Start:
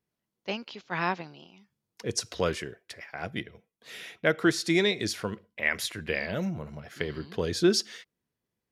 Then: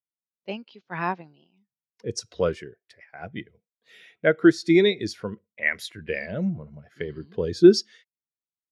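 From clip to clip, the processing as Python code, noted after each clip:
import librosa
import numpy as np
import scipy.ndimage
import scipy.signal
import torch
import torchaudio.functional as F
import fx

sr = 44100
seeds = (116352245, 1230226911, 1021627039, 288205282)

y = fx.spectral_expand(x, sr, expansion=1.5)
y = y * 10.0 ** (7.5 / 20.0)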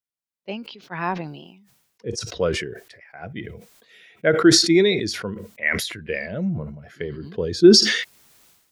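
y = fx.sustainer(x, sr, db_per_s=59.0)
y = y * 10.0 ** (1.0 / 20.0)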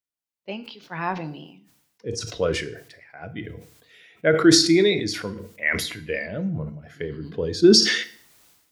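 y = fx.rev_fdn(x, sr, rt60_s=0.52, lf_ratio=1.25, hf_ratio=0.95, size_ms=20.0, drr_db=10.0)
y = y * 10.0 ** (-1.5 / 20.0)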